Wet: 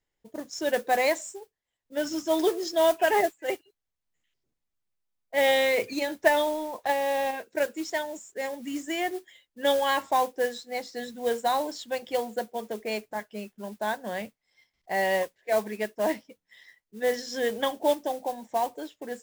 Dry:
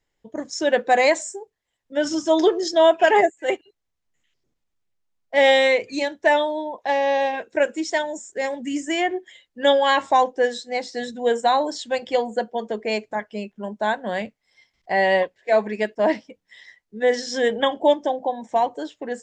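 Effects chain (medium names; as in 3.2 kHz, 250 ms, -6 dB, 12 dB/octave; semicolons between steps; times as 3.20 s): 5.53–7.31 s: transient shaper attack +5 dB, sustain +9 dB; modulation noise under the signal 18 dB; trim -7 dB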